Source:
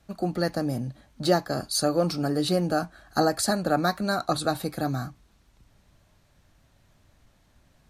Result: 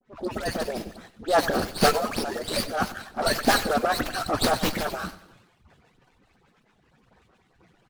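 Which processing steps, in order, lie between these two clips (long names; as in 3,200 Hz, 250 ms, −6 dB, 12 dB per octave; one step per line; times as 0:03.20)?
harmonic-percussive split with one part muted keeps percussive
low-pass that shuts in the quiet parts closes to 3,000 Hz, open at −26.5 dBFS
high-shelf EQ 6,900 Hz +10.5 dB
transient designer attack −11 dB, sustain +10 dB
pitch vibrato 0.5 Hz 27 cents
all-pass dispersion highs, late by 86 ms, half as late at 3,000 Hz
on a send: repeating echo 95 ms, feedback 46%, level −16 dB
on the sum: windowed peak hold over 5 samples
level +5.5 dB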